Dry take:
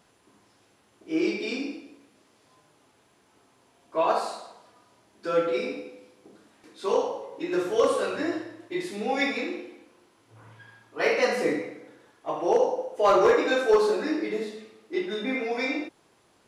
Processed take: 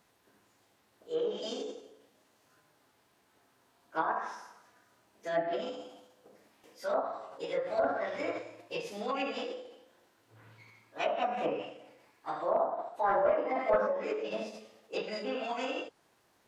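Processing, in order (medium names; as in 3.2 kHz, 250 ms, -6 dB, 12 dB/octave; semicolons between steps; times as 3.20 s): low-pass that closes with the level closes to 840 Hz, closed at -19 dBFS; formant shift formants +5 st; trim -6.5 dB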